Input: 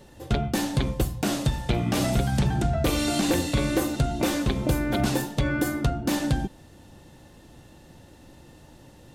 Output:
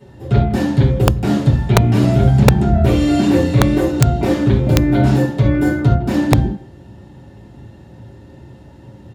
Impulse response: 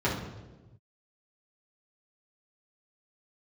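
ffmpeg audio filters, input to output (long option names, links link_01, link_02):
-filter_complex "[0:a]asplit=2[link_01][link_02];[link_02]adelay=160,highpass=300,lowpass=3400,asoftclip=type=hard:threshold=-20.5dB,volume=-16dB[link_03];[link_01][link_03]amix=inputs=2:normalize=0[link_04];[1:a]atrim=start_sample=2205,atrim=end_sample=4410[link_05];[link_04][link_05]afir=irnorm=-1:irlink=0,aeval=exprs='(mod(0.562*val(0)+1,2)-1)/0.562':channel_layout=same,volume=-6.5dB"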